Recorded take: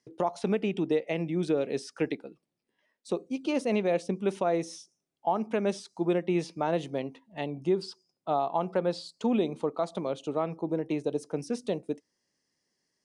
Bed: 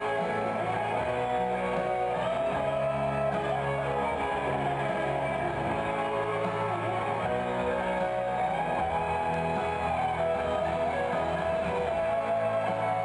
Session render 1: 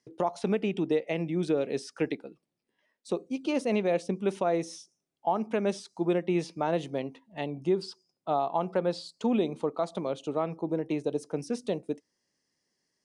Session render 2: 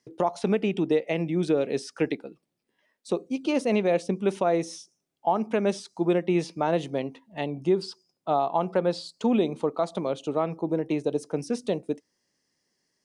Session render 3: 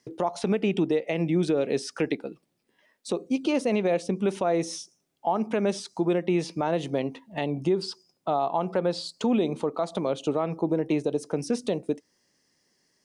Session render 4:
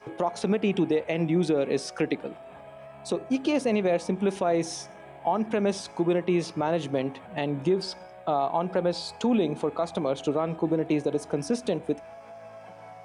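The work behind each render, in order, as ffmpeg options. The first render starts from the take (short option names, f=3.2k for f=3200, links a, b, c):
-af anull
-af "volume=3.5dB"
-filter_complex "[0:a]asplit=2[a][b];[b]acompressor=threshold=-31dB:ratio=6,volume=-0.5dB[c];[a][c]amix=inputs=2:normalize=0,alimiter=limit=-15.5dB:level=0:latency=1:release=107"
-filter_complex "[1:a]volume=-17dB[a];[0:a][a]amix=inputs=2:normalize=0"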